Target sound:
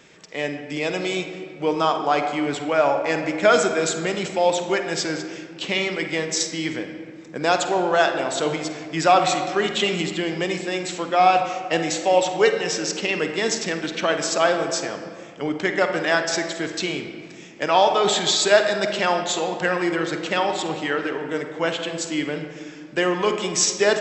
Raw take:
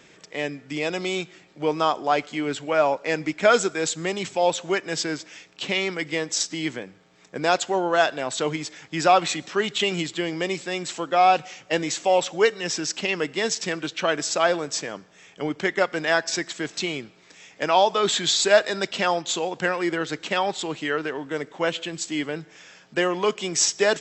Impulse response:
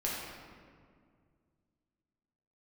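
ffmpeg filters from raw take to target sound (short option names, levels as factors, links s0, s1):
-filter_complex "[0:a]asplit=2[s0][s1];[1:a]atrim=start_sample=2205,highshelf=f=5300:g=-6.5,adelay=49[s2];[s1][s2]afir=irnorm=-1:irlink=0,volume=0.299[s3];[s0][s3]amix=inputs=2:normalize=0,volume=1.12"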